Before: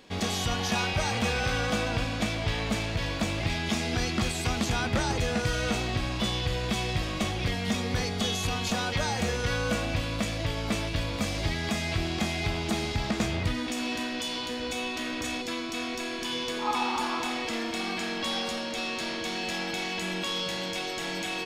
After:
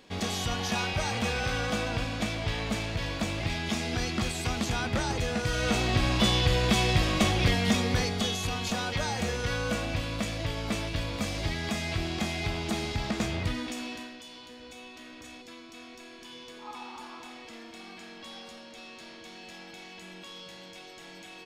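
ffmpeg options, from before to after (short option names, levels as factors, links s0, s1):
-af "volume=1.78,afade=t=in:st=5.44:d=0.66:silence=0.446684,afade=t=out:st=7.49:d=0.88:silence=0.446684,afade=t=out:st=13.53:d=0.66:silence=0.251189"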